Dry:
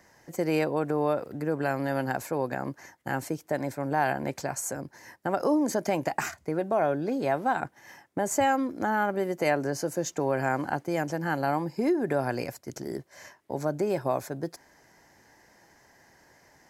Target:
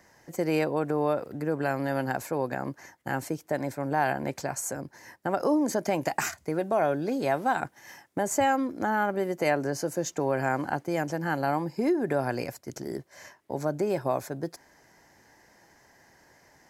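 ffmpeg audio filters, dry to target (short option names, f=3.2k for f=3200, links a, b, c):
-filter_complex "[0:a]asettb=1/sr,asplit=3[a][b][c];[a]atrim=end=6.014[d];[b]atrim=start=6.01:end=8.23,asetpts=PTS-STARTPTS,afade=t=in:d=0.004:c=qsin,afade=t=out:st=2.216:d=0.004:c=qsin,equalizer=f=12k:t=o:w=2.8:g=5.5[e];[c]atrim=start=8.226[f];[d][e]acrossfade=d=0.004:c1=hsin:c2=qsin[g];[g][f]acrossfade=d=0.004:c1=qsin:c2=hsin"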